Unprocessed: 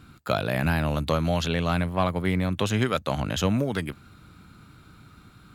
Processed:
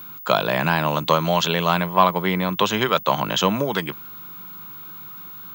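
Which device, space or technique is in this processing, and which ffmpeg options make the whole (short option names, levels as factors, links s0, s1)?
old television with a line whistle: -filter_complex "[0:a]asettb=1/sr,asplit=3[s0][s1][s2];[s0]atrim=end=2.254[s3];[s1]atrim=start=2.25:end=3.55,asetpts=PTS-STARTPTS,afade=t=in:d=0.004:c=qsin,afade=t=out:st=1.296:d=0.004:c=qsin,lowpass=6600[s4];[s2]atrim=start=3.546[s5];[s3][s4]acrossfade=d=0.004:c1=hsin:c2=qsin[s6];[s6][s5]acrossfade=d=0.004:c1=qsin:c2=hsin,highpass=f=160:w=0.5412,highpass=f=160:w=1.3066,equalizer=f=250:t=q:w=4:g=-9,equalizer=f=1000:t=q:w=4:g=10,equalizer=f=3200:t=q:w=4:g=5,equalizer=f=6300:t=q:w=4:g=4,lowpass=f=8100:w=0.5412,lowpass=f=8100:w=1.3066,aeval=exprs='val(0)+0.00891*sin(2*PI*15625*n/s)':c=same,volume=1.88"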